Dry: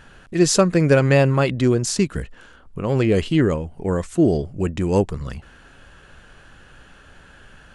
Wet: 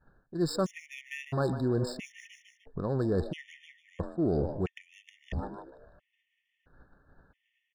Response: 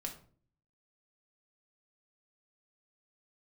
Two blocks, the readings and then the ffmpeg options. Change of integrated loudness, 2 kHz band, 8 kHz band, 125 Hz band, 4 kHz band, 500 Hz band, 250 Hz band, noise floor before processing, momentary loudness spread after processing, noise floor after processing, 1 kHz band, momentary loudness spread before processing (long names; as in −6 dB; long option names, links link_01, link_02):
−13.5 dB, −16.0 dB, below −20 dB, −14.0 dB, −15.0 dB, −13.5 dB, −13.5 dB, −49 dBFS, 18 LU, −81 dBFS, −12.5 dB, 16 LU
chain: -filter_complex "[0:a]agate=range=-33dB:threshold=-35dB:ratio=3:detection=peak,adynamicsmooth=sensitivity=2:basefreq=1700,asplit=5[link_01][link_02][link_03][link_04][link_05];[link_02]adelay=151,afreqshift=130,volume=-16dB[link_06];[link_03]adelay=302,afreqshift=260,volume=-22.6dB[link_07];[link_04]adelay=453,afreqshift=390,volume=-29.1dB[link_08];[link_05]adelay=604,afreqshift=520,volume=-35.7dB[link_09];[link_01][link_06][link_07][link_08][link_09]amix=inputs=5:normalize=0,areverse,acompressor=threshold=-30dB:ratio=5,areverse,afftfilt=real='re*gt(sin(2*PI*0.75*pts/sr)*(1-2*mod(floor(b*sr/1024/1800),2)),0)':imag='im*gt(sin(2*PI*0.75*pts/sr)*(1-2*mod(floor(b*sr/1024/1800),2)),0)':win_size=1024:overlap=0.75,volume=3dB"